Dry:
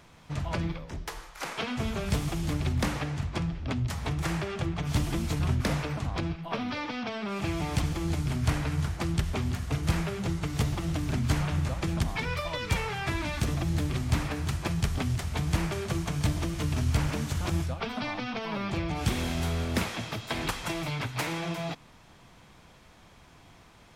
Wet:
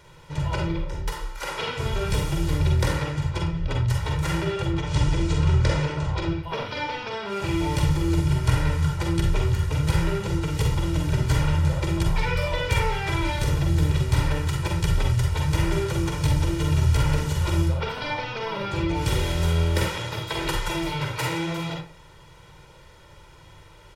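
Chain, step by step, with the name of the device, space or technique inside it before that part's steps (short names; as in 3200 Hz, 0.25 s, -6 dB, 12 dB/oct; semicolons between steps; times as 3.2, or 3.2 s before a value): microphone above a desk (comb 2.1 ms, depth 81%; reverb RT60 0.35 s, pre-delay 41 ms, DRR 0 dB); 4.81–6.43 LPF 8100 Hz 24 dB/oct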